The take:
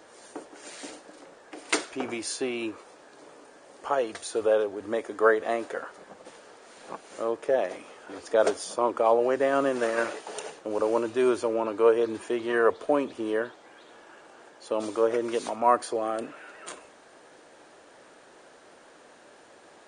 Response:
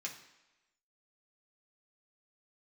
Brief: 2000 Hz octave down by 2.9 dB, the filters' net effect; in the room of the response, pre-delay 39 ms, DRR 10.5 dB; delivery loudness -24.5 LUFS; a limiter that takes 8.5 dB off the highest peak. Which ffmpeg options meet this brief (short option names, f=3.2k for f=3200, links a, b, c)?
-filter_complex "[0:a]equalizer=f=2k:t=o:g=-4,alimiter=limit=-17dB:level=0:latency=1,asplit=2[a][b];[1:a]atrim=start_sample=2205,adelay=39[c];[b][c]afir=irnorm=-1:irlink=0,volume=-10dB[d];[a][d]amix=inputs=2:normalize=0,volume=5dB"